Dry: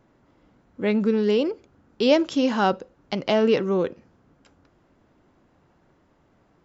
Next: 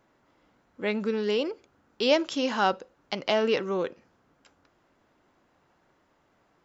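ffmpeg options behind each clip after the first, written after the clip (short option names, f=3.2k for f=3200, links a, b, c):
-af "lowshelf=f=410:g=-11.5"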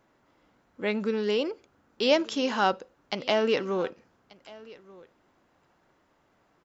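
-af "aecho=1:1:1184:0.0794"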